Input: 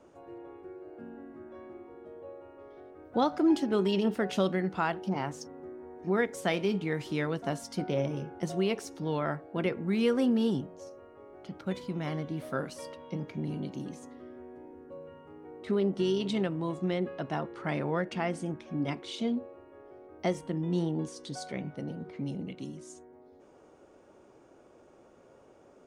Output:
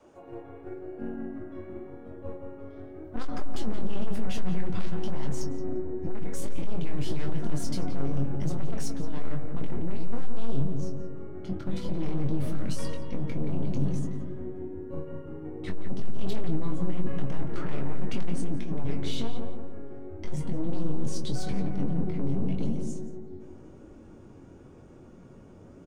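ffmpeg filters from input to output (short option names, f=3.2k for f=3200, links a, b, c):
-filter_complex "[0:a]agate=range=-7dB:threshold=-44dB:ratio=16:detection=peak,adynamicequalizer=threshold=0.00562:dfrequency=330:dqfactor=2.8:tfrequency=330:tqfactor=2.8:attack=5:release=100:ratio=0.375:range=3:mode=cutabove:tftype=bell,aeval=exprs='0.2*(cos(1*acos(clip(val(0)/0.2,-1,1)))-cos(1*PI/2))+0.0282*(cos(8*acos(clip(val(0)/0.2,-1,1)))-cos(8*PI/2))':c=same,asubboost=boost=7:cutoff=210,asplit=2[a][b];[b]acompressor=threshold=-29dB:ratio=6,volume=-2dB[c];[a][c]amix=inputs=2:normalize=0,asoftclip=type=tanh:threshold=-26.5dB,alimiter=level_in=6.5dB:limit=-24dB:level=0:latency=1:release=90,volume=-6.5dB,flanger=delay=2.3:depth=9.4:regen=49:speed=0.92:shape=triangular,asplit=2[d][e];[e]adelay=22,volume=-6.5dB[f];[d][f]amix=inputs=2:normalize=0,asplit=2[g][h];[h]adelay=173,lowpass=f=1.5k:p=1,volume=-5dB,asplit=2[i][j];[j]adelay=173,lowpass=f=1.5k:p=1,volume=0.53,asplit=2[k][l];[l]adelay=173,lowpass=f=1.5k:p=1,volume=0.53,asplit=2[m][n];[n]adelay=173,lowpass=f=1.5k:p=1,volume=0.53,asplit=2[o][p];[p]adelay=173,lowpass=f=1.5k:p=1,volume=0.53,asplit=2[q][r];[r]adelay=173,lowpass=f=1.5k:p=1,volume=0.53,asplit=2[s][t];[t]adelay=173,lowpass=f=1.5k:p=1,volume=0.53[u];[g][i][k][m][o][q][s][u]amix=inputs=8:normalize=0,volume=7.5dB"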